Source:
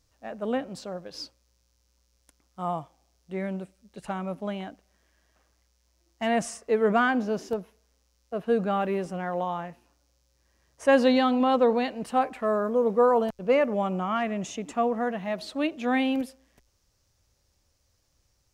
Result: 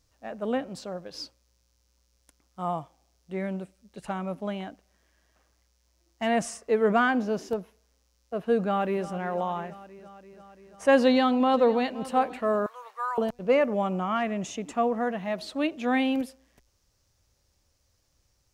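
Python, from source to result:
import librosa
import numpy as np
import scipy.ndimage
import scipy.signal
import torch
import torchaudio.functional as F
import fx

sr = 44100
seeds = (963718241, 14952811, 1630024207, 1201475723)

y = fx.echo_throw(x, sr, start_s=8.62, length_s=0.44, ms=340, feedback_pct=75, wet_db=-15.0)
y = fx.echo_throw(y, sr, start_s=11.01, length_s=1.03, ms=520, feedback_pct=30, wet_db=-18.0)
y = fx.highpass(y, sr, hz=1100.0, slope=24, at=(12.66, 13.18))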